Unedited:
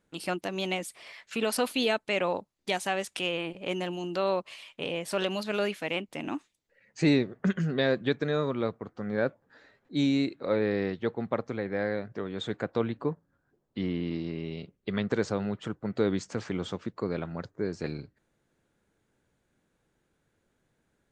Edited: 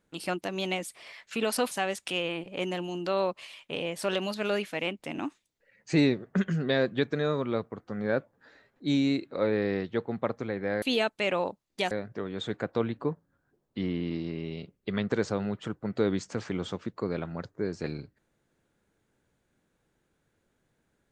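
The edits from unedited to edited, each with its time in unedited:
0:01.71–0:02.80: move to 0:11.91

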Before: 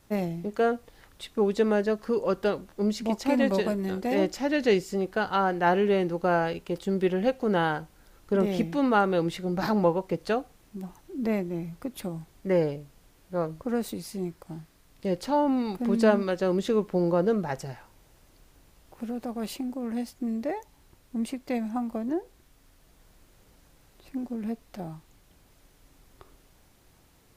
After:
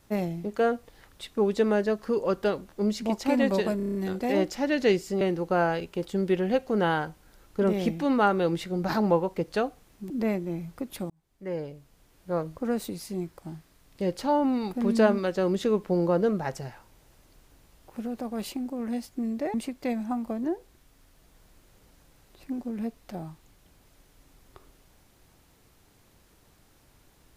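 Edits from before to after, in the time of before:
0:03.77: stutter 0.03 s, 7 plays
0:05.03–0:05.94: remove
0:10.83–0:11.14: remove
0:12.14–0:13.37: fade in
0:20.58–0:21.19: remove

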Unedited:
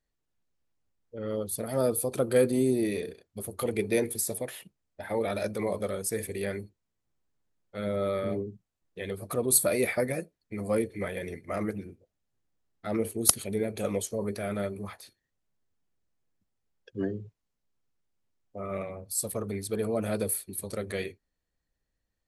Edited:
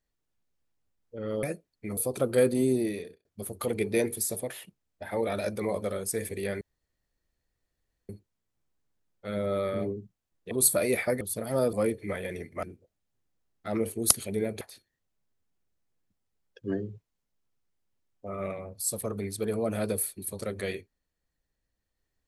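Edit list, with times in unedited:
0:01.43–0:01.95: swap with 0:10.11–0:10.65
0:02.75–0:03.23: fade out
0:06.59: splice in room tone 1.48 s
0:09.01–0:09.41: remove
0:11.55–0:11.82: remove
0:13.80–0:14.92: remove

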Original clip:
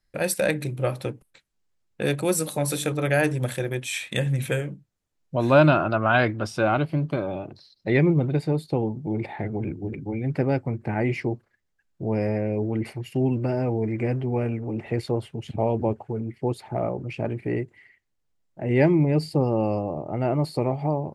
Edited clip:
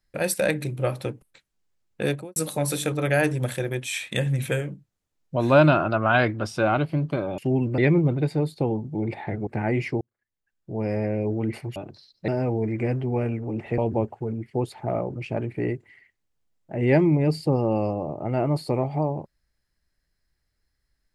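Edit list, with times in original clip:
0:02.04–0:02.36: fade out and dull
0:07.38–0:07.90: swap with 0:13.08–0:13.48
0:09.59–0:10.79: remove
0:11.33–0:12.41: fade in
0:14.98–0:15.66: remove

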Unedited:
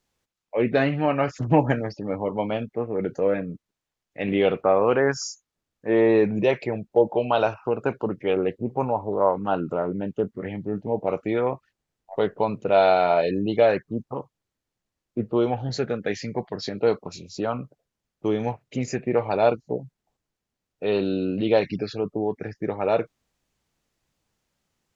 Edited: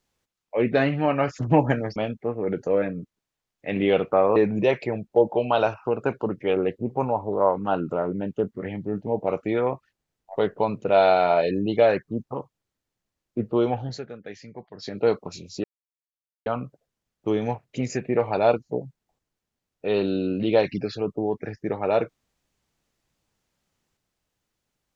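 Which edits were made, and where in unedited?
0:01.96–0:02.48: remove
0:04.88–0:06.16: remove
0:15.57–0:16.81: duck −12 dB, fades 0.27 s
0:17.44: splice in silence 0.82 s

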